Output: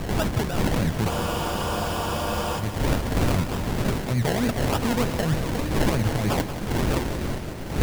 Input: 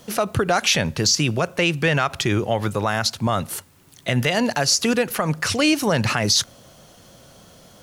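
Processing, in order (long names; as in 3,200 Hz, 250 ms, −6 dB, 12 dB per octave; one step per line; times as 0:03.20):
wind on the microphone 550 Hz −17 dBFS
in parallel at −3 dB: output level in coarse steps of 12 dB
on the sum: low-shelf EQ 210 Hz +10.5 dB
sample-and-hold swept by an LFO 29×, swing 60% 3.3 Hz
reversed playback
downward compressor 8 to 1, threshold −15 dBFS, peak gain reduction 22 dB
reversed playback
frozen spectrum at 0:01.11, 1.47 s
feedback echo at a low word length 182 ms, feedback 80%, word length 6 bits, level −11 dB
level −5 dB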